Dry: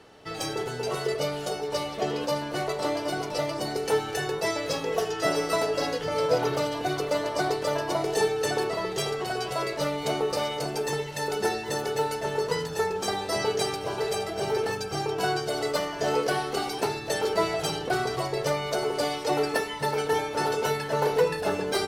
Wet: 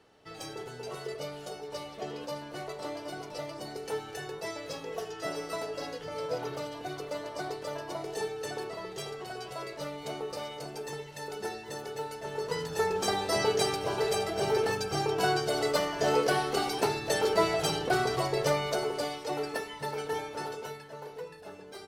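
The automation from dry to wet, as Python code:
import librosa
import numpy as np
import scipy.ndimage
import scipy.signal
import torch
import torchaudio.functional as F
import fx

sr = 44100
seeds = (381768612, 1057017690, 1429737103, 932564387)

y = fx.gain(x, sr, db=fx.line((12.16, -10.0), (12.93, -0.5), (18.57, -0.5), (19.21, -8.0), (20.28, -8.0), (21.03, -19.0)))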